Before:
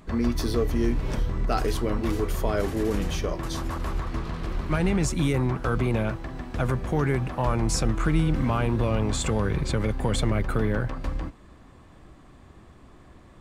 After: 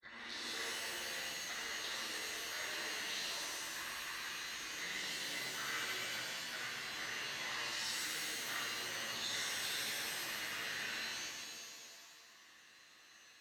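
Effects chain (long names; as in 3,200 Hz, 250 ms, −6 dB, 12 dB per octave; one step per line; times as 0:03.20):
granular cloud, pitch spread up and down by 0 semitones
tube saturation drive 32 dB, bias 0.7
pair of resonant band-passes 2,700 Hz, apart 0.95 octaves
reverb with rising layers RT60 1.9 s, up +7 semitones, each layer −2 dB, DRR −6.5 dB
level +2.5 dB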